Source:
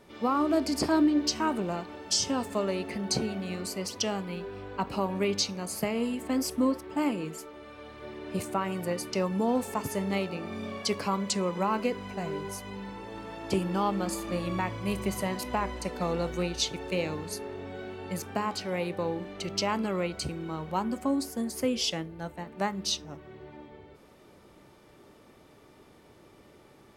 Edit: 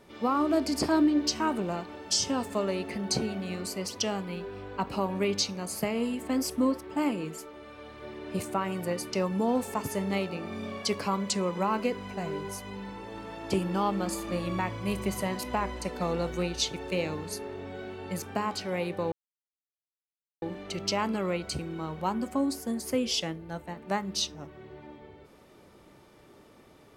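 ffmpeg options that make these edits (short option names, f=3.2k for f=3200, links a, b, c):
-filter_complex "[0:a]asplit=2[a][b];[a]atrim=end=19.12,asetpts=PTS-STARTPTS,afade=t=out:st=19.116:d=0.004:c=hsin,apad=pad_dur=1.3[c];[b]atrim=start=19.12,asetpts=PTS-STARTPTS,afade=t=in:d=0.004:c=hsin[d];[c][d]concat=n=2:v=0:a=1"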